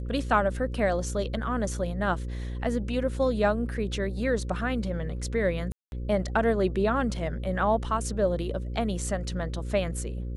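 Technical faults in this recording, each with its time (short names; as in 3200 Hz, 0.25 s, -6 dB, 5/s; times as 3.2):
buzz 60 Hz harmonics 9 -33 dBFS
5.72–5.92 gap 0.201 s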